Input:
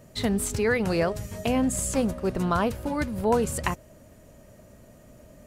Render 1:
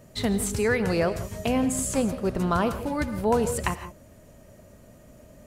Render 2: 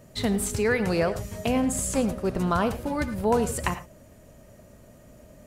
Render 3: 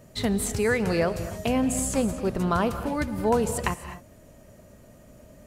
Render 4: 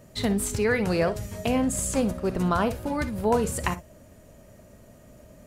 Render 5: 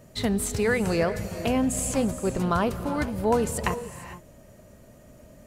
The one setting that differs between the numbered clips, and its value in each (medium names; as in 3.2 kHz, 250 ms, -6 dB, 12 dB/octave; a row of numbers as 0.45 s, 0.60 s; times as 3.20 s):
gated-style reverb, gate: 190 ms, 130 ms, 280 ms, 80 ms, 480 ms